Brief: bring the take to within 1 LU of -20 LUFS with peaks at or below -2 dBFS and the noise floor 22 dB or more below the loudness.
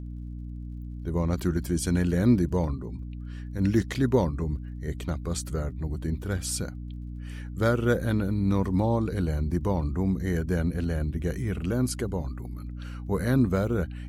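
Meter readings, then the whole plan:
tick rate 28 per s; hum 60 Hz; highest harmonic 300 Hz; hum level -34 dBFS; loudness -27.5 LUFS; peak level -10.0 dBFS; loudness target -20.0 LUFS
-> de-click; de-hum 60 Hz, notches 5; trim +7.5 dB

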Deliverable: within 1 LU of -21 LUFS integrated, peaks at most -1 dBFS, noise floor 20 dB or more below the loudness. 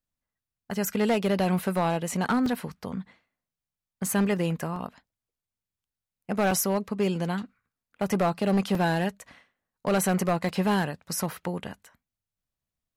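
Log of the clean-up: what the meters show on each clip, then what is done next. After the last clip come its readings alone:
clipped samples 1.1%; clipping level -18.5 dBFS; dropouts 5; longest dropout 3.0 ms; loudness -27.5 LUFS; peak level -18.5 dBFS; loudness target -21.0 LUFS
-> clip repair -18.5 dBFS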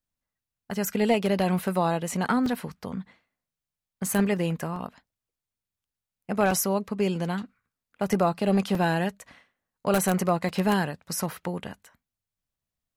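clipped samples 0.0%; dropouts 5; longest dropout 3.0 ms
-> interpolate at 2.46/4.76/6.51/8.75/10.49 s, 3 ms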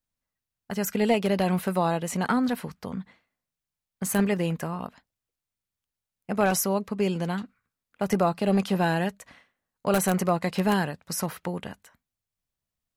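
dropouts 0; loudness -26.5 LUFS; peak level -9.5 dBFS; loudness target -21.0 LUFS
-> trim +5.5 dB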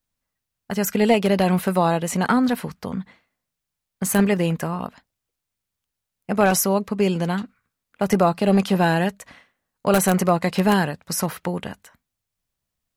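loudness -21.0 LUFS; peak level -4.0 dBFS; noise floor -83 dBFS

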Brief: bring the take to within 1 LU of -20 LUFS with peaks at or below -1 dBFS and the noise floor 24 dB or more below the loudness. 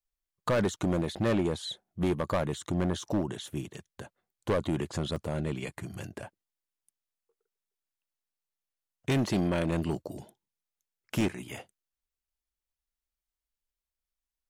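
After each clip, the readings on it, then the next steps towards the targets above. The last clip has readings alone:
clipped samples 1.6%; clipping level -22.0 dBFS; dropouts 5; longest dropout 3.2 ms; loudness -31.5 LUFS; peak level -22.0 dBFS; loudness target -20.0 LUFS
-> clip repair -22 dBFS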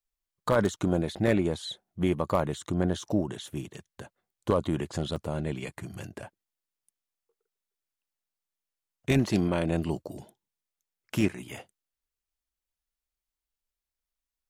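clipped samples 0.0%; dropouts 5; longest dropout 3.2 ms
-> interpolate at 1.16/2.54/5.16/9.27/11.21 s, 3.2 ms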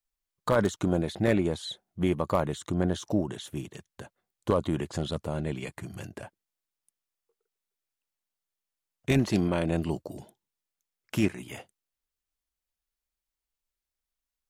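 dropouts 0; loudness -29.5 LUFS; peak level -13.0 dBFS; loudness target -20.0 LUFS
-> trim +9.5 dB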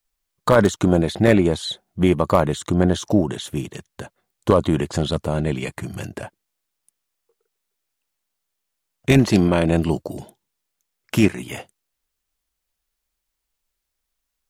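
loudness -20.0 LUFS; peak level -3.5 dBFS; noise floor -79 dBFS

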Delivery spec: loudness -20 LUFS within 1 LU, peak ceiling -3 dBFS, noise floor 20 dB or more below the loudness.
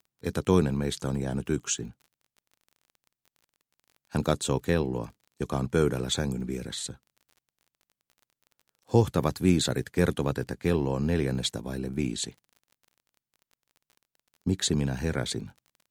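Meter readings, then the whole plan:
tick rate 30 per s; loudness -28.5 LUFS; peak level -8.5 dBFS; loudness target -20.0 LUFS
-> de-click; trim +8.5 dB; peak limiter -3 dBFS

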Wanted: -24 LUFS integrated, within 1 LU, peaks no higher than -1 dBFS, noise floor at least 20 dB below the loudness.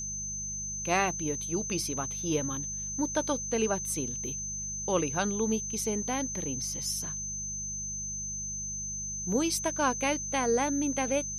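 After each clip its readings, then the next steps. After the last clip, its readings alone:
hum 50 Hz; highest harmonic 200 Hz; hum level -42 dBFS; steady tone 6.2 kHz; tone level -34 dBFS; loudness -30.5 LUFS; peak level -12.5 dBFS; loudness target -24.0 LUFS
-> de-hum 50 Hz, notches 4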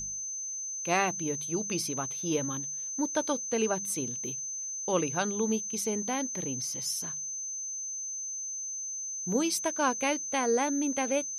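hum not found; steady tone 6.2 kHz; tone level -34 dBFS
-> band-stop 6.2 kHz, Q 30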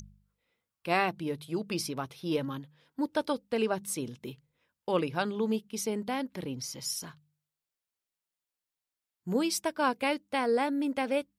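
steady tone not found; loudness -32.0 LUFS; peak level -13.0 dBFS; loudness target -24.0 LUFS
-> trim +8 dB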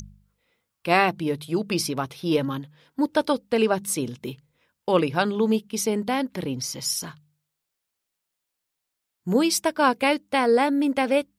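loudness -24.0 LUFS; peak level -5.0 dBFS; noise floor -82 dBFS

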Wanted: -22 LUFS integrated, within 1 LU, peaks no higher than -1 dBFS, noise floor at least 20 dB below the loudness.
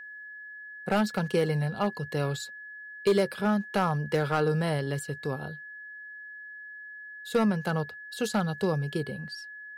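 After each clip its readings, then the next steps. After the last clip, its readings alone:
clipped samples 0.3%; clipping level -17.0 dBFS; steady tone 1.7 kHz; tone level -41 dBFS; loudness -29.0 LUFS; peak level -17.0 dBFS; loudness target -22.0 LUFS
-> clip repair -17 dBFS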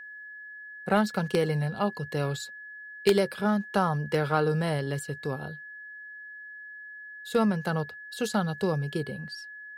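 clipped samples 0.0%; steady tone 1.7 kHz; tone level -41 dBFS
-> band-stop 1.7 kHz, Q 30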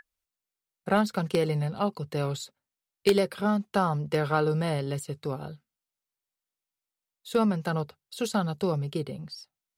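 steady tone not found; loudness -28.5 LUFS; peak level -8.0 dBFS; loudness target -22.0 LUFS
-> trim +6.5 dB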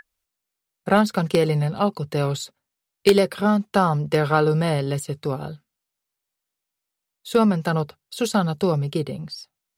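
loudness -22.0 LUFS; peak level -1.5 dBFS; noise floor -83 dBFS

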